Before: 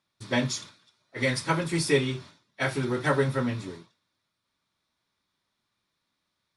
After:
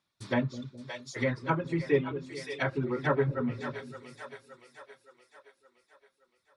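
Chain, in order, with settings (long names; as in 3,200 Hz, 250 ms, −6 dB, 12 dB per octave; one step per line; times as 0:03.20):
reverb reduction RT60 1.9 s
echo with a time of its own for lows and highs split 450 Hz, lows 210 ms, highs 569 ms, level −11 dB
treble cut that deepens with the level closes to 1,600 Hz, closed at −24.5 dBFS
level −1.5 dB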